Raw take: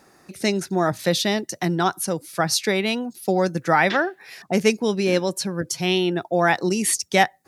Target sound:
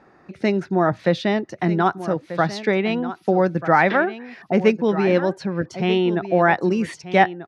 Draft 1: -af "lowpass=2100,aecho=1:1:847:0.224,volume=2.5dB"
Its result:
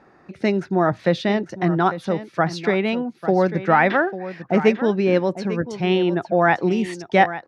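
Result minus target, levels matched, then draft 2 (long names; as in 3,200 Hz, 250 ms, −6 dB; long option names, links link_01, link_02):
echo 391 ms early
-af "lowpass=2100,aecho=1:1:1238:0.224,volume=2.5dB"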